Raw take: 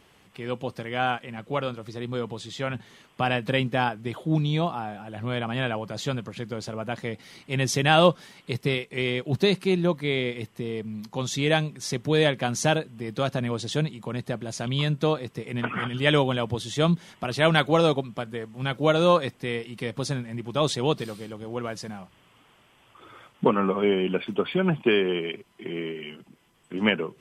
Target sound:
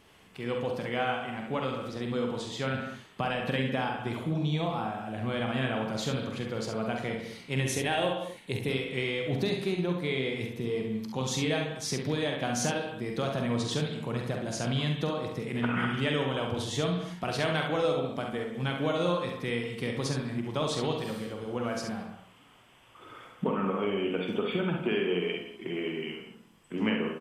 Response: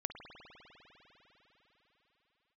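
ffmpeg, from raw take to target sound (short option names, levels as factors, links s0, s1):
-filter_complex "[0:a]asettb=1/sr,asplit=3[s0][s1][s2];[s0]atrim=end=7.644[s3];[s1]atrim=start=7.64:end=8.69,asetpts=PTS-STARTPTS,afade=t=in:d=0.004:c=qsin,afade=t=out:st=1.046:d=0.004:c=qsin,equalizer=f=100:t=o:w=0.33:g=7,equalizer=f=160:t=o:w=0.33:g=-10,equalizer=f=1250:t=o:w=0.33:g=-10,equalizer=f=5000:t=o:w=0.33:g=-11,equalizer=f=10000:t=o:w=0.33:g=6[s4];[s2]atrim=start=8.686[s5];[s3][s4]acrossfade=d=0.004:c1=hsin:c2=qsin[s6];[s6][s5]acrossfade=d=0.004:c1=qsin:c2=hsin,acompressor=threshold=0.0562:ratio=5,aecho=1:1:46|68:0.473|0.473[s7];[1:a]atrim=start_sample=2205,afade=t=out:st=0.26:d=0.01,atrim=end_sample=11907[s8];[s7][s8]afir=irnorm=-1:irlink=0"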